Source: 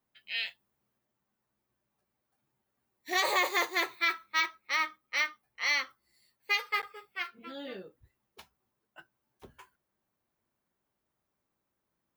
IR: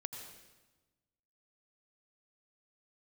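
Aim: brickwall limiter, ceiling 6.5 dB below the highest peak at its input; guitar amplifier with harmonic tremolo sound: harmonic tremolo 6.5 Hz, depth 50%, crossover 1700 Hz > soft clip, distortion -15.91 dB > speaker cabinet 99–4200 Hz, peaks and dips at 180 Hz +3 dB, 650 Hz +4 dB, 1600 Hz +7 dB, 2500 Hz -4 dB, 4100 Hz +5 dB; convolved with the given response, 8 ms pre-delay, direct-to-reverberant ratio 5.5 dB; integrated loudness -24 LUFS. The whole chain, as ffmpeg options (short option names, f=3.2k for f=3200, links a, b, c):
-filter_complex "[0:a]alimiter=limit=-22.5dB:level=0:latency=1,asplit=2[a][b];[1:a]atrim=start_sample=2205,adelay=8[c];[b][c]afir=irnorm=-1:irlink=0,volume=-4dB[d];[a][d]amix=inputs=2:normalize=0,acrossover=split=1700[e][f];[e]aeval=exprs='val(0)*(1-0.5/2+0.5/2*cos(2*PI*6.5*n/s))':c=same[g];[f]aeval=exprs='val(0)*(1-0.5/2-0.5/2*cos(2*PI*6.5*n/s))':c=same[h];[g][h]amix=inputs=2:normalize=0,asoftclip=threshold=-28dB,highpass=99,equalizer=f=180:t=q:w=4:g=3,equalizer=f=650:t=q:w=4:g=4,equalizer=f=1.6k:t=q:w=4:g=7,equalizer=f=2.5k:t=q:w=4:g=-4,equalizer=f=4.1k:t=q:w=4:g=5,lowpass=f=4.2k:w=0.5412,lowpass=f=4.2k:w=1.3066,volume=13dB"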